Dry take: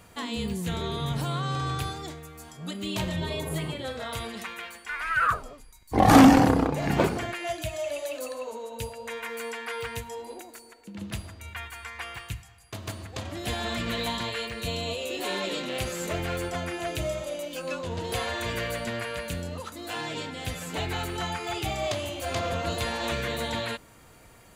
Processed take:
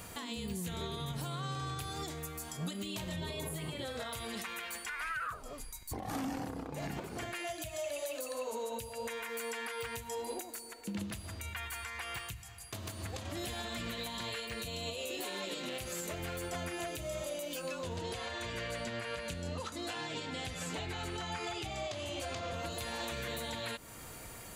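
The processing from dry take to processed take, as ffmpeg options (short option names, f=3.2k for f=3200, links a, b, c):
-filter_complex "[0:a]asettb=1/sr,asplit=3[a][b][c];[a]atrim=end=18.014[d];[b]atrim=start=18.01:end=22.54,asetpts=PTS-STARTPTS,afade=t=in:d=0.004:c=qsin,afade=t=out:st=4.526:d=0.004:c=qsin,lowpass=7k[e];[c]atrim=start=22.536[f];[d][e]acrossfade=d=0.004:c1=hsin:c2=qsin[g];[g][f]acrossfade=d=0.004:c1=qsin:c2=hsin,highshelf=f=5.6k:g=8,acompressor=threshold=-34dB:ratio=10,alimiter=level_in=9dB:limit=-24dB:level=0:latency=1:release=312,volume=-9dB,volume=3.5dB"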